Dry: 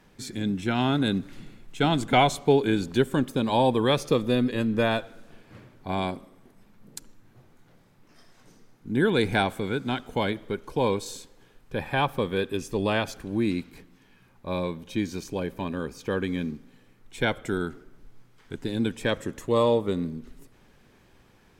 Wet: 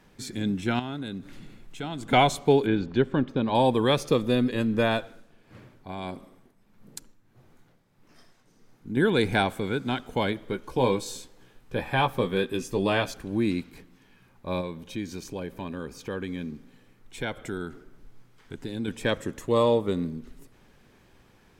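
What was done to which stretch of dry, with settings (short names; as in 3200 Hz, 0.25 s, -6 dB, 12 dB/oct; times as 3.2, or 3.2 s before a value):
0.79–2.09 compressor 2:1, threshold -39 dBFS
2.66–3.55 air absorption 230 m
5.03–8.97 tremolo 1.6 Hz, depth 63%
10.46–13.14 doubler 16 ms -7 dB
14.61–18.88 compressor 1.5:1, threshold -37 dBFS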